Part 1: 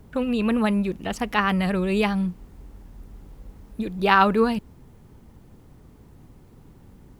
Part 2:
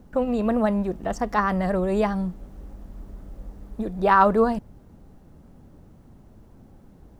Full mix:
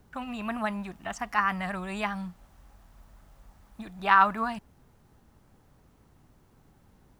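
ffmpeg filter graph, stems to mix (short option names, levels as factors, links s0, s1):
-filter_complex "[0:a]volume=0.266[s0];[1:a]highpass=1000,volume=0.841[s1];[s0][s1]amix=inputs=2:normalize=0"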